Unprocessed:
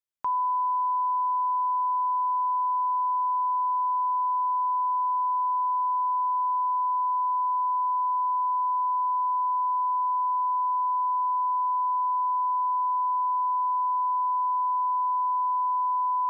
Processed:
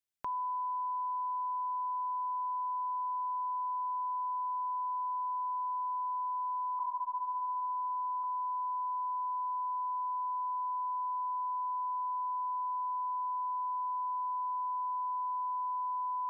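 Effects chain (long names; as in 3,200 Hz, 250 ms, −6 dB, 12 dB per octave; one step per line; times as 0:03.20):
parametric band 970 Hz −9.5 dB
0:06.79–0:08.24: linear-prediction vocoder at 8 kHz pitch kept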